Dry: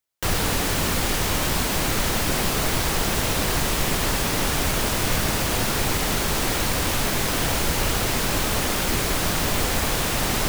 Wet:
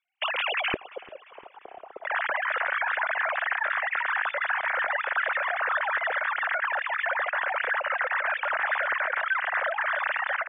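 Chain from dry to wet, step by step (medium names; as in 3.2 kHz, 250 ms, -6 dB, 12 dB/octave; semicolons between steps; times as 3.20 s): formants replaced by sine waves; peak limiter -17.5 dBFS, peak gain reduction 7 dB; resonant low-pass 2.7 kHz, resonance Q 3.3, from 0.74 s 400 Hz, from 2.05 s 1.7 kHz; feedback delay 347 ms, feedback 55%, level -22 dB; trim -7 dB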